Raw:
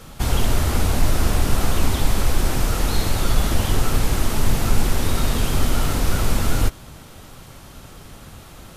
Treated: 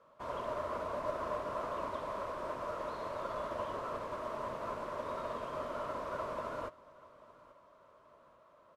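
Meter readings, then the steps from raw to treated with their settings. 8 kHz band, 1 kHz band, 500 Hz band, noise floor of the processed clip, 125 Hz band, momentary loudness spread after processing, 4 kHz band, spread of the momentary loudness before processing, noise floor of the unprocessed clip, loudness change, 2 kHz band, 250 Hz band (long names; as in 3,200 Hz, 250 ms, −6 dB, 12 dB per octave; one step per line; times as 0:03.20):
−34.0 dB, −8.5 dB, −8.0 dB, −63 dBFS, −31.5 dB, 6 LU, −26.5 dB, 20 LU, −42 dBFS, −17.0 dB, −18.0 dB, −22.5 dB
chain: pair of resonant band-passes 790 Hz, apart 0.72 octaves
on a send: repeating echo 835 ms, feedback 45%, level −15 dB
on the sum: expander for the loud parts 1.5 to 1, over −50 dBFS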